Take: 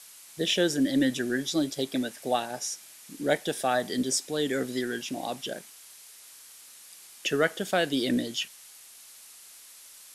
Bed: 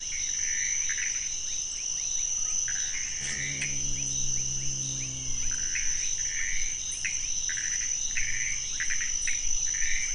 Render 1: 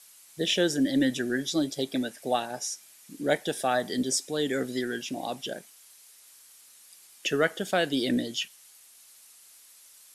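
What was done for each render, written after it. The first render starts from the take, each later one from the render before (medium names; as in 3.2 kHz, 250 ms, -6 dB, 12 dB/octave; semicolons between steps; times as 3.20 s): noise reduction 6 dB, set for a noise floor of -50 dBFS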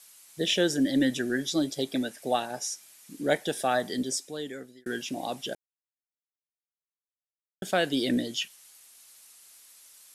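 3.78–4.86 s: fade out; 5.55–7.62 s: mute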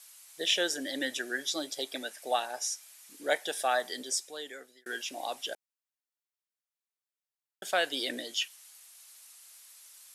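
high-pass 630 Hz 12 dB/octave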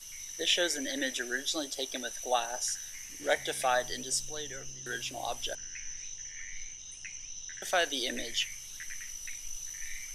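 add bed -13 dB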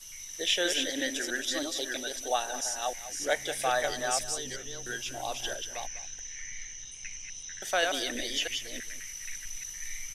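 chunks repeated in reverse 326 ms, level -4 dB; echo from a far wall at 34 m, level -14 dB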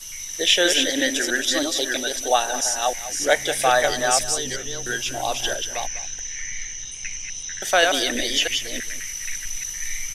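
trim +10 dB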